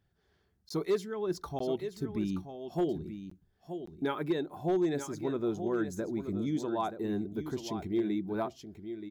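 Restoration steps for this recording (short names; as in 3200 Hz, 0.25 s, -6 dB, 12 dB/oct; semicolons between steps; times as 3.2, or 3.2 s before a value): clip repair -22.5 dBFS; interpolate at 0.69/1.59/3.3/3.86, 14 ms; inverse comb 0.927 s -10 dB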